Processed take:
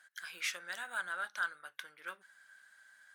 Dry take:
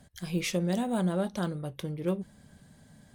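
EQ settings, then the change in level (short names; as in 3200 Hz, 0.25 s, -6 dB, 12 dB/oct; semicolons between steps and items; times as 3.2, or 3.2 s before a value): resonant high-pass 1500 Hz, resonance Q 7.6; -5.5 dB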